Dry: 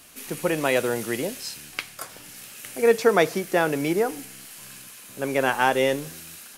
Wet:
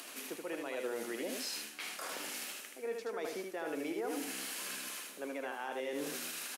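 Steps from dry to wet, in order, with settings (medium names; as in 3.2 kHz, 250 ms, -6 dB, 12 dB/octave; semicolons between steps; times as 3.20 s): high-pass 260 Hz 24 dB/octave; treble shelf 7.1 kHz -7 dB; reverse; compression 16:1, threshold -38 dBFS, peak gain reduction 25.5 dB; reverse; peak limiter -35 dBFS, peak gain reduction 10.5 dB; upward compressor, threshold -52 dBFS; on a send: delay 77 ms -4 dB; on the sum: trim +3.5 dB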